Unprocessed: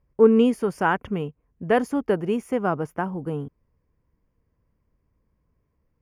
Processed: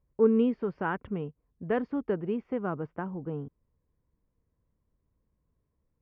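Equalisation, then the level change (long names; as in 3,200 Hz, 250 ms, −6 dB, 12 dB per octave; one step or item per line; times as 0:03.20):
Chebyshev low-pass filter 4,200 Hz, order 4
dynamic equaliser 730 Hz, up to −5 dB, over −34 dBFS, Q 1.9
high-shelf EQ 2,000 Hz −11 dB
−5.0 dB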